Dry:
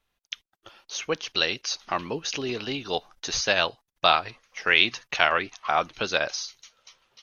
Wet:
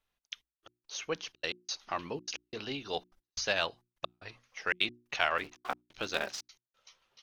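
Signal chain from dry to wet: 5.38–6.43 s: cycle switcher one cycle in 3, muted; in parallel at -11.5 dB: saturation -19 dBFS, distortion -7 dB; on the sum: trance gate "xxxxxx.x.." 178 bpm -60 dB; hum notches 60/120/180/240/300/360 Hz; trim -9 dB

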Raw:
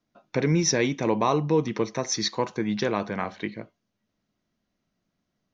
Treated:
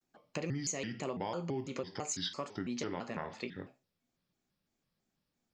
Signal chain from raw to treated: treble shelf 5 kHz +8 dB; reverberation RT60 0.30 s, pre-delay 7 ms, DRR 9.5 dB; compression 4:1, threshold -28 dBFS, peak gain reduction 11.5 dB; vibrato with a chosen wave square 3 Hz, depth 250 cents; trim -7 dB

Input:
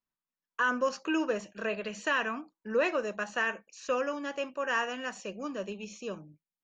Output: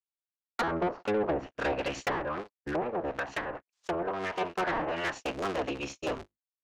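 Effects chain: cycle switcher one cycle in 3, inverted; low-pass that closes with the level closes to 700 Hz, closed at -26 dBFS; gate -44 dBFS, range -39 dB; peaking EQ 150 Hz -8 dB 1.9 oct; 2.17–4.41 s: compression 2:1, threshold -39 dBFS, peak gain reduction 7.5 dB; saturation -32 dBFS, distortion -12 dB; trim +8.5 dB

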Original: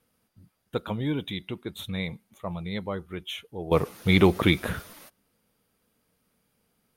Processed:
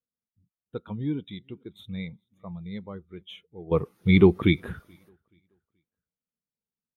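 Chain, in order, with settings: dynamic bell 590 Hz, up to -5 dB, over -42 dBFS, Q 2.9; feedback delay 429 ms, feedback 46%, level -22.5 dB; spectral contrast expander 1.5:1

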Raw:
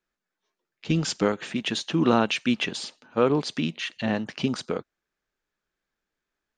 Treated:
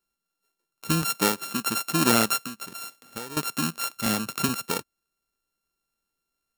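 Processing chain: sorted samples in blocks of 32 samples; 1.02–1.68 s: high-pass 120 Hz; 2.42–3.37 s: compression 12:1, threshold -34 dBFS, peak gain reduction 19.5 dB; treble shelf 4.5 kHz +10 dB; 4.06–4.49 s: three bands compressed up and down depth 70%; trim -1.5 dB

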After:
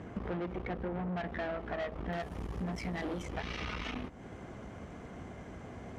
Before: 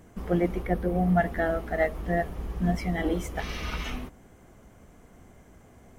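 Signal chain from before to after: valve stage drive 30 dB, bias 0.75; high-pass 64 Hz; compression 4:1, threshold -50 dBFS, peak gain reduction 16.5 dB; low-pass 3.1 kHz 12 dB/octave, from 2.13 s 8.5 kHz, from 3.23 s 4.4 kHz; trim +12.5 dB

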